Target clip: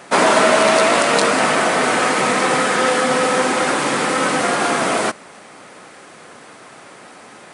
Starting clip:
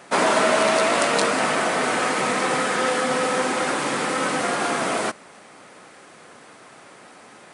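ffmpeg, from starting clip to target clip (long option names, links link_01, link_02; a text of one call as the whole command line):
ffmpeg -i in.wav -af "alimiter=level_in=6.5dB:limit=-1dB:release=50:level=0:latency=1,volume=-1dB" out.wav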